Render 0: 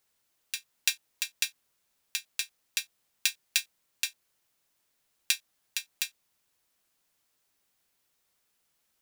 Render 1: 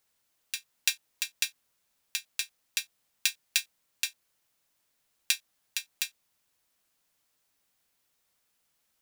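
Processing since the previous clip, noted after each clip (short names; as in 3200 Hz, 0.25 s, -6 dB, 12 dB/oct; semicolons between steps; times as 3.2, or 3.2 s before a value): notch 380 Hz, Q 12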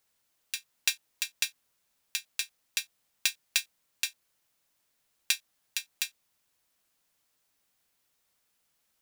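hard clip -8.5 dBFS, distortion -18 dB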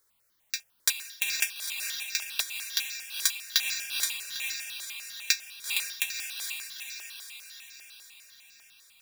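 diffused feedback echo 0.46 s, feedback 61%, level -3.5 dB; step phaser 10 Hz 730–3100 Hz; gain +6 dB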